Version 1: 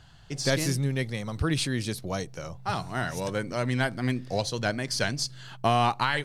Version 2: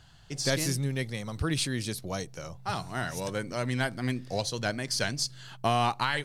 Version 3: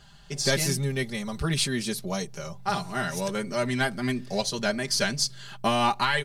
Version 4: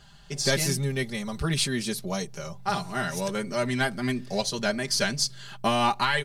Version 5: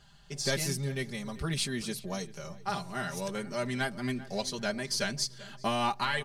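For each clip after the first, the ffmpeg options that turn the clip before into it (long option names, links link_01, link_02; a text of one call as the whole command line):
ffmpeg -i in.wav -af "highshelf=frequency=4400:gain=5,volume=-3dB" out.wav
ffmpeg -i in.wav -af "aecho=1:1:5:0.92,volume=1.5dB" out.wav
ffmpeg -i in.wav -af anull out.wav
ffmpeg -i in.wav -filter_complex "[0:a]asplit=2[link_01][link_02];[link_02]adelay=390,lowpass=frequency=2300:poles=1,volume=-17dB,asplit=2[link_03][link_04];[link_04]adelay=390,lowpass=frequency=2300:poles=1,volume=0.33,asplit=2[link_05][link_06];[link_06]adelay=390,lowpass=frequency=2300:poles=1,volume=0.33[link_07];[link_01][link_03][link_05][link_07]amix=inputs=4:normalize=0,volume=-6dB" out.wav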